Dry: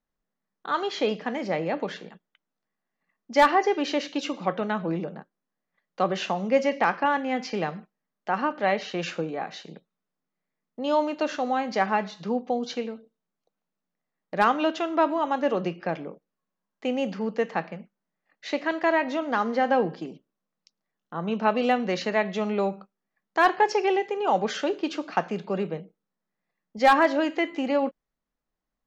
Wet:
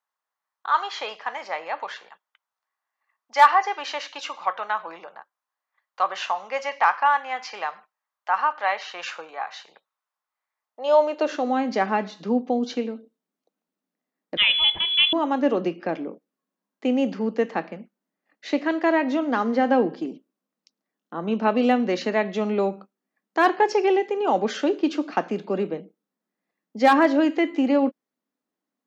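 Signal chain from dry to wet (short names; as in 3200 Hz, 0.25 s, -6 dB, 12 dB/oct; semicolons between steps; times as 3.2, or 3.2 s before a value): high-pass sweep 980 Hz -> 260 Hz, 10.57–11.55; 14.37–15.13 inverted band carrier 3700 Hz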